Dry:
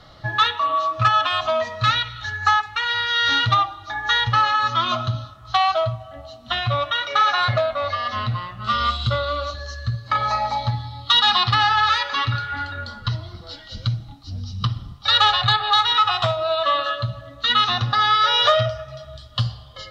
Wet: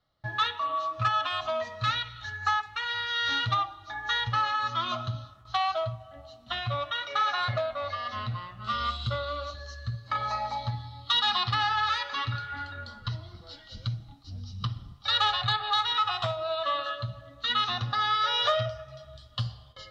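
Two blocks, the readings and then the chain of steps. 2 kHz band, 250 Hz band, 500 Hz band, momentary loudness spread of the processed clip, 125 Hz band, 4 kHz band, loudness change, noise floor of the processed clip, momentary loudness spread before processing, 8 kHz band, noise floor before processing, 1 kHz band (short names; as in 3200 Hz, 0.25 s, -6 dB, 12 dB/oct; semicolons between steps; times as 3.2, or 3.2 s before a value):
-9.0 dB, -9.0 dB, -9.0 dB, 14 LU, -9.0 dB, -9.0 dB, -9.0 dB, -52 dBFS, 14 LU, n/a, -43 dBFS, -9.0 dB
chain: gate with hold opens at -35 dBFS; gain -9 dB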